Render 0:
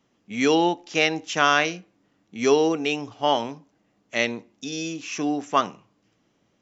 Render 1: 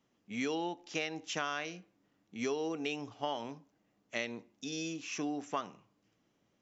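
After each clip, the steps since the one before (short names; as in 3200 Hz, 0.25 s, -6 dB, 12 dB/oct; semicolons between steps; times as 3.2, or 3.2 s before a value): compressor 6:1, threshold -24 dBFS, peak gain reduction 10.5 dB; gain -8 dB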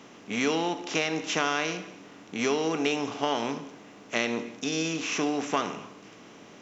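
per-bin compression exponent 0.6; non-linear reverb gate 0.35 s falling, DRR 11.5 dB; gain +6 dB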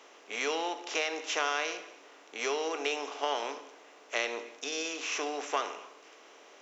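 HPF 410 Hz 24 dB/oct; gain -3 dB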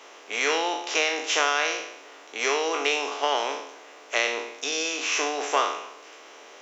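spectral trails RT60 0.67 s; low shelf 220 Hz -7.5 dB; gain +6.5 dB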